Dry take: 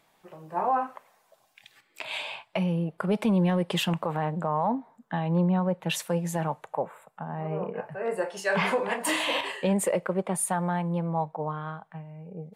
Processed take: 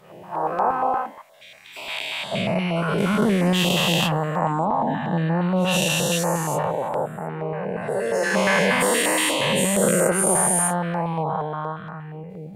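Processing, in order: spectral dilation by 0.48 s; pre-echo 0.11 s -18 dB; stepped notch 8.5 Hz 310–3400 Hz

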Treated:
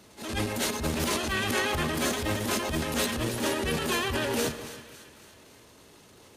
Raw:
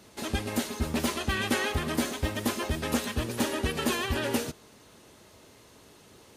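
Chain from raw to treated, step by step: transient shaper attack -9 dB, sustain +10 dB; split-band echo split 1300 Hz, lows 0.151 s, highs 0.276 s, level -13.5 dB

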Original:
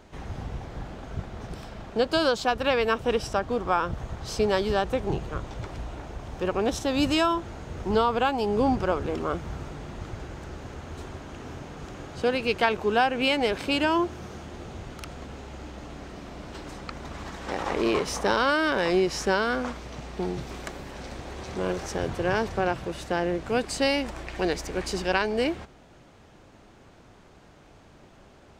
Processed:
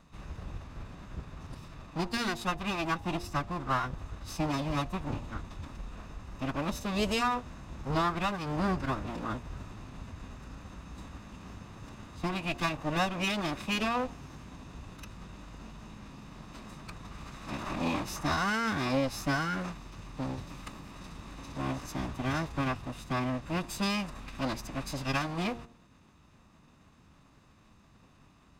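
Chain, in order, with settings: minimum comb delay 0.8 ms; formant-preserving pitch shift -5.5 st; de-hum 117 Hz, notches 8; gain -4.5 dB

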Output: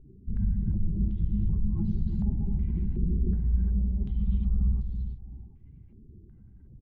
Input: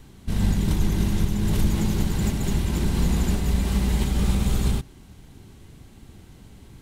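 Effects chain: spectral contrast raised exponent 2.1; on a send: feedback echo 0.332 s, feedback 26%, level -6 dB; on the sum: stepped low-pass 2.7 Hz 410–4500 Hz; gain -5 dB

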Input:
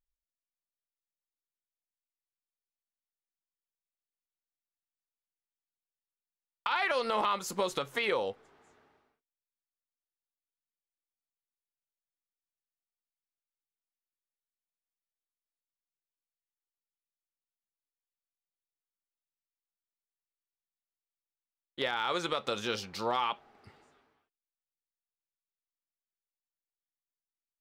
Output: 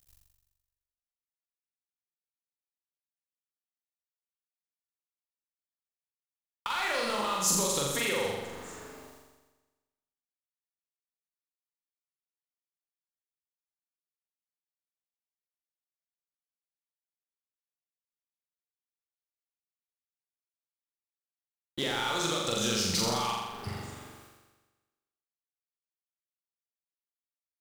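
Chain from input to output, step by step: G.711 law mismatch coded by mu; compressor 3:1, threshold -41 dBFS, peak gain reduction 12 dB; tone controls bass +8 dB, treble +8 dB; flutter echo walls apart 7.3 m, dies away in 1.2 s; dynamic EQ 7400 Hz, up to +6 dB, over -54 dBFS, Q 1; gain +4.5 dB

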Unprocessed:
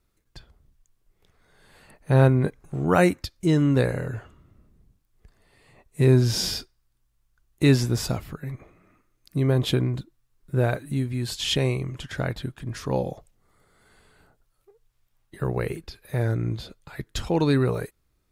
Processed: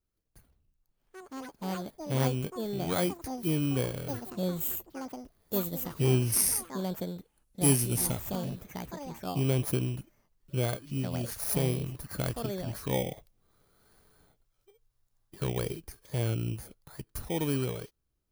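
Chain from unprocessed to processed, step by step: FFT order left unsorted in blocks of 16 samples; vocal rider within 5 dB 2 s; 6.32–8.1 bell 10000 Hz +14.5 dB 0.85 oct; echoes that change speed 0.133 s, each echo +6 st, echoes 3, each echo -6 dB; gain -8.5 dB

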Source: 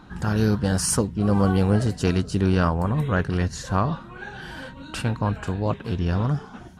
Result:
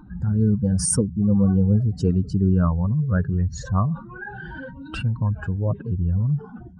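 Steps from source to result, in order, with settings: spectral contrast raised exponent 2.2; gain +2 dB

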